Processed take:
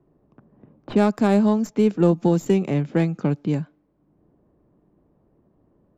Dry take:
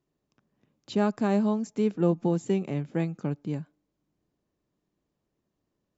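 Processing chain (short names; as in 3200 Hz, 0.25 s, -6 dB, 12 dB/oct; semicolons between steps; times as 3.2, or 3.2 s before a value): tracing distortion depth 0.056 ms; low-pass opened by the level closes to 910 Hz, open at -25 dBFS; three-band squash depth 40%; gain +7 dB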